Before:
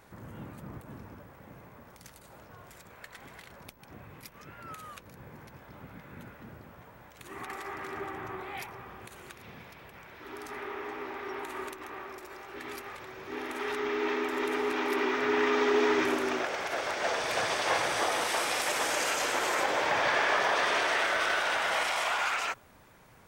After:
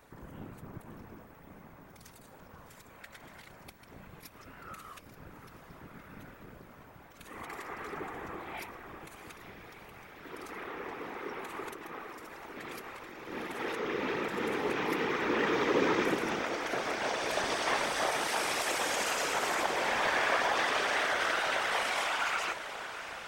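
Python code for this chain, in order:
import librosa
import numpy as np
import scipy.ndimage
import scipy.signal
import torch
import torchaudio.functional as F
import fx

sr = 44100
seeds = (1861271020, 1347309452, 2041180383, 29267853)

y = fx.echo_diffused(x, sr, ms=702, feedback_pct=69, wet_db=-12.5)
y = fx.whisperise(y, sr, seeds[0])
y = F.gain(torch.from_numpy(y), -2.5).numpy()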